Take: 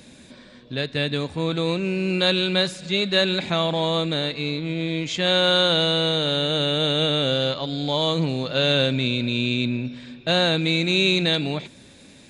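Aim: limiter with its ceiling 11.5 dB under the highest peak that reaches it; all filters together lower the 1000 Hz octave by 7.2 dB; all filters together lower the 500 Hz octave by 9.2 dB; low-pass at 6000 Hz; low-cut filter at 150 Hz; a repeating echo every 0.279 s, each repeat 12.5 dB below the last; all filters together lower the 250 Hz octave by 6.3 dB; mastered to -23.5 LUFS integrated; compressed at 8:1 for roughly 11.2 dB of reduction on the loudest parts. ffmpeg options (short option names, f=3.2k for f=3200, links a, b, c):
-af "highpass=150,lowpass=6k,equalizer=f=250:t=o:g=-5,equalizer=f=500:t=o:g=-8,equalizer=f=1k:t=o:g=-7,acompressor=threshold=-30dB:ratio=8,alimiter=level_in=6dB:limit=-24dB:level=0:latency=1,volume=-6dB,aecho=1:1:279|558|837:0.237|0.0569|0.0137,volume=15dB"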